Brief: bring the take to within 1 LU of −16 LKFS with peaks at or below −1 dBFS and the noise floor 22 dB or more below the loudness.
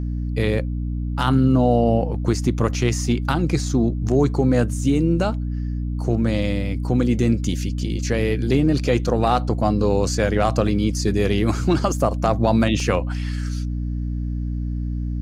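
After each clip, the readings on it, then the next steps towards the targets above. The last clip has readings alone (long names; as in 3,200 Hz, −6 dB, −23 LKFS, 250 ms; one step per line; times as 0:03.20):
number of dropouts 1; longest dropout 1.9 ms; mains hum 60 Hz; hum harmonics up to 300 Hz; level of the hum −22 dBFS; integrated loudness −21.0 LKFS; sample peak −4.0 dBFS; target loudness −16.0 LKFS
→ repair the gap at 0:12.80, 1.9 ms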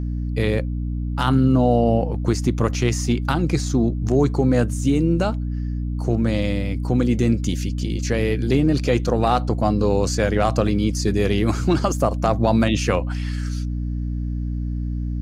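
number of dropouts 0; mains hum 60 Hz; hum harmonics up to 300 Hz; level of the hum −22 dBFS
→ mains-hum notches 60/120/180/240/300 Hz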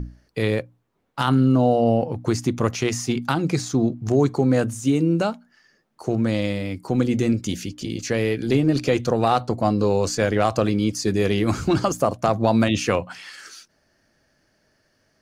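mains hum none found; integrated loudness −22.0 LKFS; sample peak −5.0 dBFS; target loudness −16.0 LKFS
→ level +6 dB
brickwall limiter −1 dBFS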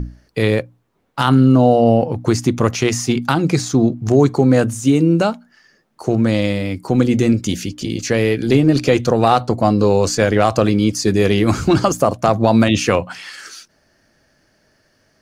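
integrated loudness −16.0 LKFS; sample peak −1.0 dBFS; background noise floor −60 dBFS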